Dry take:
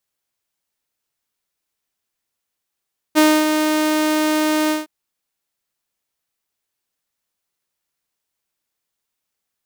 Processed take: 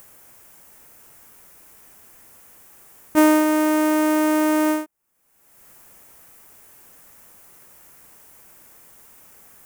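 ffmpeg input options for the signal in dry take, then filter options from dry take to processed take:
-f lavfi -i "aevalsrc='0.473*(2*mod(308*t,1)-1)':d=1.714:s=44100,afade=t=in:d=0.032,afade=t=out:st=0.032:d=0.263:silence=0.473,afade=t=out:st=1.55:d=0.164"
-af "equalizer=f=4k:w=1.1:g=-14.5,acompressor=mode=upward:threshold=-23dB:ratio=2.5"

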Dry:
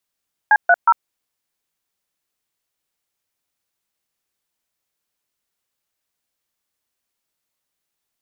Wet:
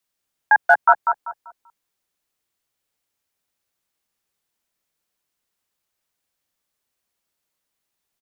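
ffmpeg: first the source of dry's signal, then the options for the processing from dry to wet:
-f lavfi -i "aevalsrc='0.282*clip(min(mod(t,0.182),0.05-mod(t,0.182))/0.002,0,1)*(eq(floor(t/0.182),0)*(sin(2*PI*852*mod(t,0.182))+sin(2*PI*1633*mod(t,0.182)))+eq(floor(t/0.182),1)*(sin(2*PI*697*mod(t,0.182))+sin(2*PI*1477*mod(t,0.182)))+eq(floor(t/0.182),2)*(sin(2*PI*941*mod(t,0.182))+sin(2*PI*1336*mod(t,0.182))))':d=0.546:s=44100"
-filter_complex "[0:a]acrossover=split=150|330|820[a][b][c][d];[b]aeval=exprs='(mod(75*val(0)+1,2)-1)/75':c=same[e];[a][e][c][d]amix=inputs=4:normalize=0,asplit=2[f][g];[g]adelay=194,lowpass=f=1.5k:p=1,volume=-4dB,asplit=2[h][i];[i]adelay=194,lowpass=f=1.5k:p=1,volume=0.33,asplit=2[j][k];[k]adelay=194,lowpass=f=1.5k:p=1,volume=0.33,asplit=2[l][m];[m]adelay=194,lowpass=f=1.5k:p=1,volume=0.33[n];[f][h][j][l][n]amix=inputs=5:normalize=0"

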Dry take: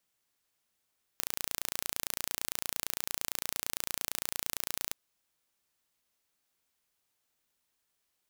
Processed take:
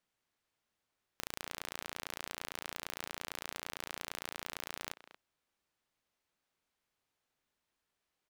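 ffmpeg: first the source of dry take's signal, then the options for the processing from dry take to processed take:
-f lavfi -i "aevalsrc='0.531*eq(mod(n,1531),0)':d=3.74:s=44100"
-filter_complex "[0:a]lowpass=f=2.7k:p=1,asplit=2[a][b];[b]adelay=230,highpass=300,lowpass=3.4k,asoftclip=type=hard:threshold=-25dB,volume=-12dB[c];[a][c]amix=inputs=2:normalize=0"

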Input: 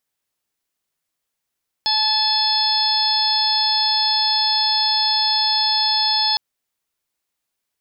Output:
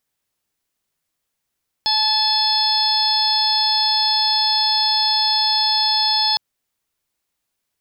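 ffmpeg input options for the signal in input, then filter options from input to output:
-f lavfi -i "aevalsrc='0.0708*sin(2*PI*864*t)+0.0224*sin(2*PI*1728*t)+0.0112*sin(2*PI*2592*t)+0.0631*sin(2*PI*3456*t)+0.1*sin(2*PI*4320*t)+0.1*sin(2*PI*5184*t)':d=4.51:s=44100"
-filter_complex "[0:a]lowshelf=f=220:g=5,asplit=2[a][b];[b]asoftclip=type=tanh:threshold=-27dB,volume=-12dB[c];[a][c]amix=inputs=2:normalize=0"

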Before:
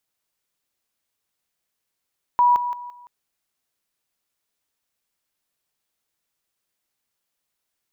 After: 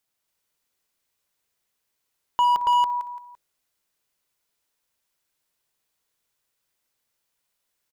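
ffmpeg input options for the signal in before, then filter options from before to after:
-f lavfi -i "aevalsrc='pow(10,(-12.5-10*floor(t/0.17))/20)*sin(2*PI*973*t)':d=0.68:s=44100"
-af "aecho=1:1:53|175|279|281:0.168|0.2|0.335|0.668,asoftclip=type=hard:threshold=-16.5dB,bandreject=f=69.72:t=h:w=4,bandreject=f=139.44:t=h:w=4,bandreject=f=209.16:t=h:w=4,bandreject=f=278.88:t=h:w=4,bandreject=f=348.6:t=h:w=4,bandreject=f=418.32:t=h:w=4,bandreject=f=488.04:t=h:w=4,bandreject=f=557.76:t=h:w=4"

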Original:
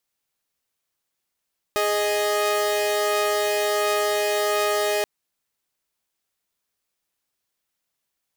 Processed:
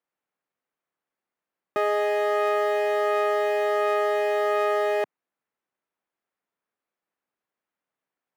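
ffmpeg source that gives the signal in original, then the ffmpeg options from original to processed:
-f lavfi -i "aevalsrc='0.0944*((2*mod(415.3*t,1)-1)+(2*mod(622.25*t,1)-1))':d=3.28:s=44100"
-filter_complex "[0:a]acrossover=split=150 2200:gain=0.126 1 0.1[a][b][c];[a][b][c]amix=inputs=3:normalize=0"

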